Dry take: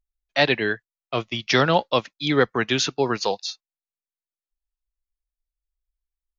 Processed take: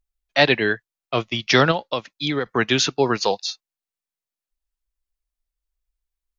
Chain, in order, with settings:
0:01.71–0:02.46: downward compressor 12 to 1, threshold −23 dBFS, peak gain reduction 11.5 dB
level +3 dB

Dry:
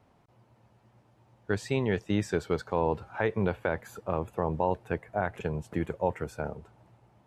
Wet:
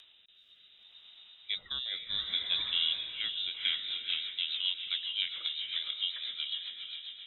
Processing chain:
voice inversion scrambler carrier 3,800 Hz
upward compression, threshold −41 dBFS
on a send: feedback delay with all-pass diffusion 477 ms, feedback 47%, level −3.5 dB
on the sum: rotating-speaker cabinet horn 0.65 Hz, later 7.5 Hz, at 0:03.35
level −4 dB

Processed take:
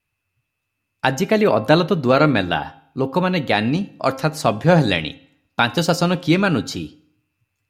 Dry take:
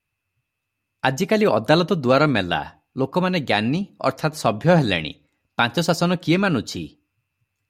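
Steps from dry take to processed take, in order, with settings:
hum removal 266.8 Hz, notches 14
0:01.19–0:03.68: dynamic equaliser 7,300 Hz, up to −6 dB, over −44 dBFS, Q 0.96
feedback delay network reverb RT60 0.73 s, low-frequency decay 1×, high-frequency decay 0.8×, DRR 19 dB
level +2 dB

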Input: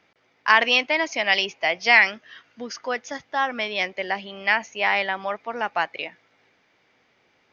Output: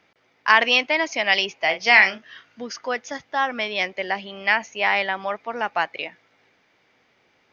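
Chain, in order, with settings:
0:01.59–0:02.63: double-tracking delay 37 ms −9 dB
level +1 dB

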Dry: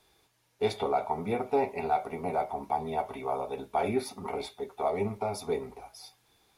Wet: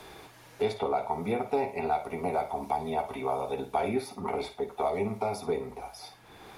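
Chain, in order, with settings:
flutter between parallel walls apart 9.2 metres, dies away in 0.26 s
multiband upward and downward compressor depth 70%

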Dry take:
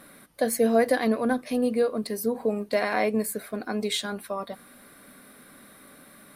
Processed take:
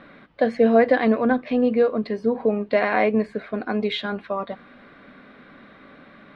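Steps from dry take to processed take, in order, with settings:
low-pass filter 3,300 Hz 24 dB per octave
level +5 dB

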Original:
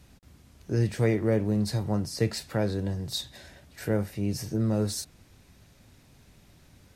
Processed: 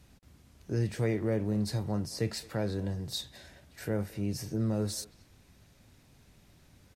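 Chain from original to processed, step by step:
in parallel at −2.5 dB: brickwall limiter −20 dBFS, peak gain reduction 7 dB
on the sum: far-end echo of a speakerphone 220 ms, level −20 dB
level −8.5 dB

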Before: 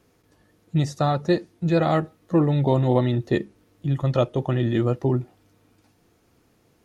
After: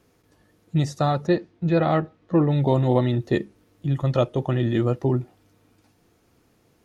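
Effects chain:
0:01.27–0:02.51: low-pass filter 3,700 Hz 12 dB per octave

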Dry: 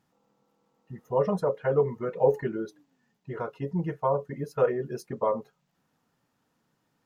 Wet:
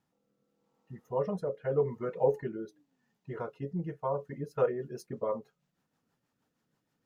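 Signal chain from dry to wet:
rotating-speaker cabinet horn 0.85 Hz, later 6.3 Hz, at 0:04.06
level −3.5 dB

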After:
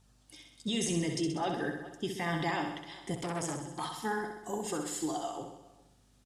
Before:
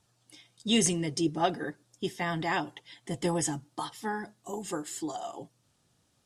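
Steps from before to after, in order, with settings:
mains hum 50 Hz, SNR 34 dB
slap from a distant wall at 70 metres, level −24 dB
brickwall limiter −24 dBFS, peak gain reduction 11.5 dB
on a send: repeating echo 64 ms, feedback 59%, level −6 dB
0:03.15–0:04.00: on the sum: saturating transformer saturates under 1,200 Hz

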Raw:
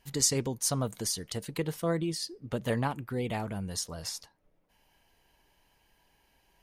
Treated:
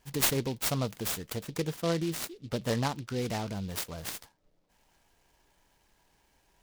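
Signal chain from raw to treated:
short delay modulated by noise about 3,500 Hz, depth 0.069 ms

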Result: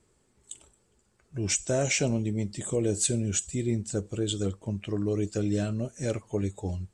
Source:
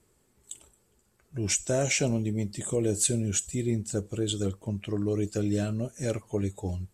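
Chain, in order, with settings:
low-pass filter 9,100 Hz 24 dB per octave

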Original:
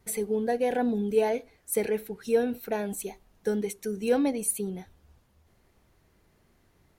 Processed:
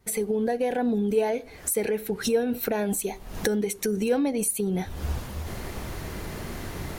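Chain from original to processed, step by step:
camcorder AGC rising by 77 dB per second

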